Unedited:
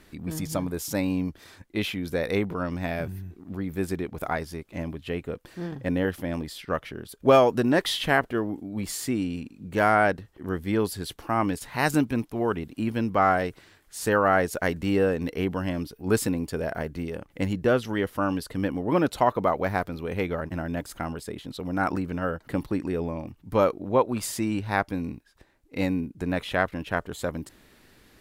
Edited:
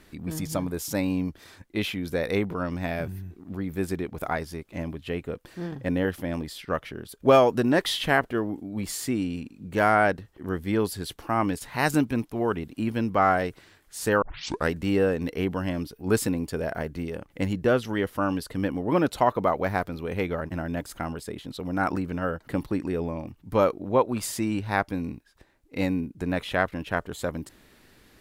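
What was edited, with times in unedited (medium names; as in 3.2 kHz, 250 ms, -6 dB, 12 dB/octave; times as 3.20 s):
14.22 s: tape start 0.49 s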